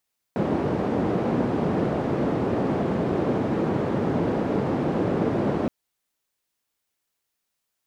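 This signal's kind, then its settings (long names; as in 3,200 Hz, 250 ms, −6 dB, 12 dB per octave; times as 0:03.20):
band-limited noise 140–380 Hz, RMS −24 dBFS 5.32 s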